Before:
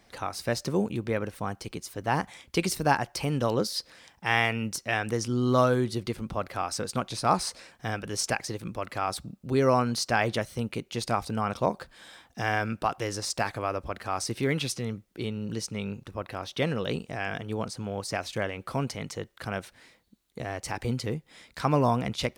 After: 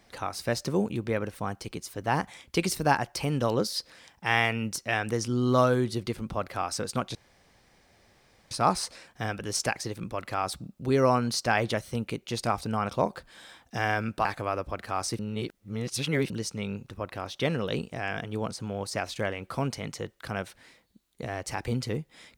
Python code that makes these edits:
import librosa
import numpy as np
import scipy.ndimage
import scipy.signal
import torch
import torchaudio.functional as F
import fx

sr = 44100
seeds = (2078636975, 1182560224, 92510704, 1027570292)

y = fx.edit(x, sr, fx.insert_room_tone(at_s=7.15, length_s=1.36),
    fx.cut(start_s=12.89, length_s=0.53),
    fx.reverse_span(start_s=14.36, length_s=1.11), tone=tone)